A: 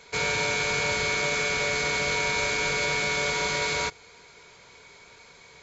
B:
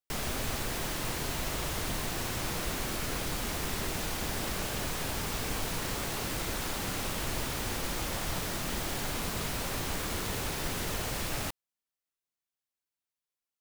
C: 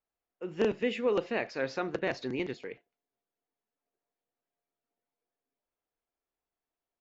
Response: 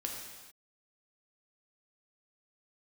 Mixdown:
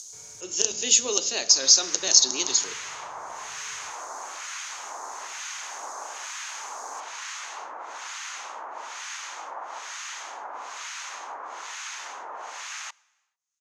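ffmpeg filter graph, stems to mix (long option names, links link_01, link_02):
-filter_complex "[0:a]lowpass=1500,equalizer=frequency=100:width=3:gain=11,asoftclip=type=tanh:threshold=-35.5dB,volume=-19dB[link_01];[1:a]acrossover=split=3300[link_02][link_03];[link_03]acompressor=threshold=-52dB:ratio=4:attack=1:release=60[link_04];[link_02][link_04]amix=inputs=2:normalize=0,acrossover=split=1300[link_05][link_06];[link_05]aeval=exprs='val(0)*(1-1/2+1/2*cos(2*PI*1.1*n/s))':channel_layout=same[link_07];[link_06]aeval=exprs='val(0)*(1-1/2-1/2*cos(2*PI*1.1*n/s))':channel_layout=same[link_08];[link_07][link_08]amix=inputs=2:normalize=0,highpass=frequency=930:width_type=q:width=2.3,adelay=1400,volume=2.5dB,asplit=2[link_09][link_10];[link_10]volume=-23dB[link_11];[2:a]bandreject=frequency=490:width=12,acompressor=mode=upward:threshold=-57dB:ratio=2.5,aexciter=amount=9.9:drive=9:freq=3400,volume=-1dB,asplit=3[link_12][link_13][link_14];[link_13]volume=-14.5dB[link_15];[link_14]apad=whole_len=661814[link_16];[link_09][link_16]sidechaincompress=threshold=-30dB:ratio=8:attack=37:release=390[link_17];[link_17][link_12]amix=inputs=2:normalize=0,highpass=frequency=230:width=0.5412,highpass=frequency=230:width=1.3066,alimiter=limit=-15dB:level=0:latency=1:release=360,volume=0dB[link_18];[3:a]atrim=start_sample=2205[link_19];[link_11][link_15]amix=inputs=2:normalize=0[link_20];[link_20][link_19]afir=irnorm=-1:irlink=0[link_21];[link_01][link_18][link_21]amix=inputs=3:normalize=0,lowpass=frequency=6500:width_type=q:width=9.3"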